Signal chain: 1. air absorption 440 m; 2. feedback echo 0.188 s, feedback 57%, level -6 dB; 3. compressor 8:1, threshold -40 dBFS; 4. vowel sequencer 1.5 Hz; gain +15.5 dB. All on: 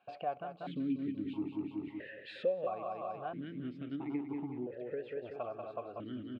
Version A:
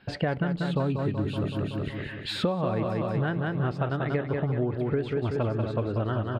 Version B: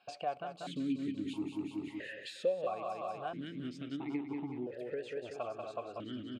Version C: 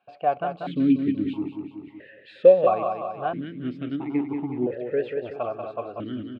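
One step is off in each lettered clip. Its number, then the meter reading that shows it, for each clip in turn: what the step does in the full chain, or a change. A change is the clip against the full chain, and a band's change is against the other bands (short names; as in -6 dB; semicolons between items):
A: 4, 125 Hz band +13.0 dB; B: 1, 4 kHz band +6.5 dB; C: 3, crest factor change +4.5 dB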